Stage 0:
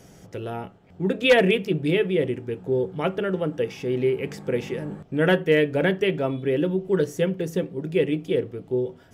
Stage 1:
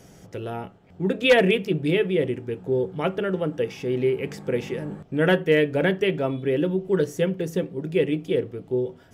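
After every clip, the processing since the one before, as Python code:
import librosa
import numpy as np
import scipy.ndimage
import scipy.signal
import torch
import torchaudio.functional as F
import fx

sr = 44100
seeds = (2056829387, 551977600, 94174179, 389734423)

y = x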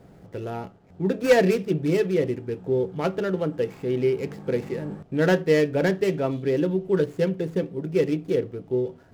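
y = scipy.ndimage.median_filter(x, 15, mode='constant')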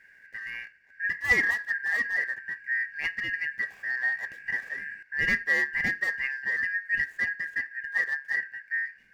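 y = fx.band_shuffle(x, sr, order='2143')
y = y * 10.0 ** (-6.0 / 20.0)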